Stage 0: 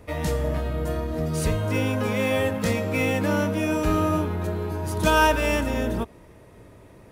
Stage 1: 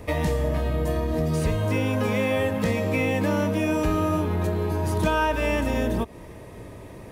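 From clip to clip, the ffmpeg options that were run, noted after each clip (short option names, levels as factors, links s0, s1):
-filter_complex "[0:a]acrossover=split=3100[s0][s1];[s1]acompressor=threshold=0.0112:ratio=4:attack=1:release=60[s2];[s0][s2]amix=inputs=2:normalize=0,bandreject=f=1400:w=8.2,acompressor=threshold=0.0316:ratio=3,volume=2.37"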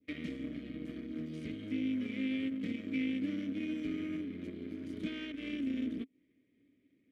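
-filter_complex "[0:a]adynamicequalizer=threshold=0.01:dfrequency=1800:dqfactor=0.8:tfrequency=1800:tqfactor=0.8:attack=5:release=100:ratio=0.375:range=2.5:mode=cutabove:tftype=bell,aeval=exprs='0.282*(cos(1*acos(clip(val(0)/0.282,-1,1)))-cos(1*PI/2))+0.0355*(cos(7*acos(clip(val(0)/0.282,-1,1)))-cos(7*PI/2))':c=same,asplit=3[s0][s1][s2];[s0]bandpass=f=270:t=q:w=8,volume=1[s3];[s1]bandpass=f=2290:t=q:w=8,volume=0.501[s4];[s2]bandpass=f=3010:t=q:w=8,volume=0.355[s5];[s3][s4][s5]amix=inputs=3:normalize=0"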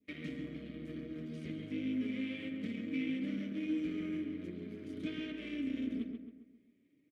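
-filter_complex "[0:a]flanger=delay=4.5:depth=2.5:regen=42:speed=1.5:shape=triangular,asplit=2[s0][s1];[s1]adelay=135,lowpass=f=2300:p=1,volume=0.596,asplit=2[s2][s3];[s3]adelay=135,lowpass=f=2300:p=1,volume=0.47,asplit=2[s4][s5];[s5]adelay=135,lowpass=f=2300:p=1,volume=0.47,asplit=2[s6][s7];[s7]adelay=135,lowpass=f=2300:p=1,volume=0.47,asplit=2[s8][s9];[s9]adelay=135,lowpass=f=2300:p=1,volume=0.47,asplit=2[s10][s11];[s11]adelay=135,lowpass=f=2300:p=1,volume=0.47[s12];[s0][s2][s4][s6][s8][s10][s12]amix=inputs=7:normalize=0,volume=1.19"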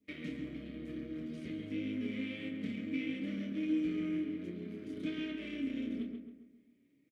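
-filter_complex "[0:a]asplit=2[s0][s1];[s1]adelay=29,volume=0.447[s2];[s0][s2]amix=inputs=2:normalize=0"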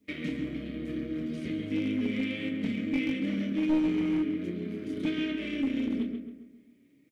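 -af "aeval=exprs='clip(val(0),-1,0.0251)':c=same,volume=2.51"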